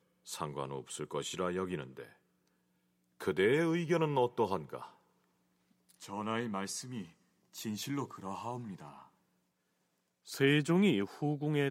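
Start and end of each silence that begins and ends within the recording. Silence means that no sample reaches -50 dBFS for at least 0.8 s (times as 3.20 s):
2.13–3.21 s
4.91–5.90 s
9.05–10.27 s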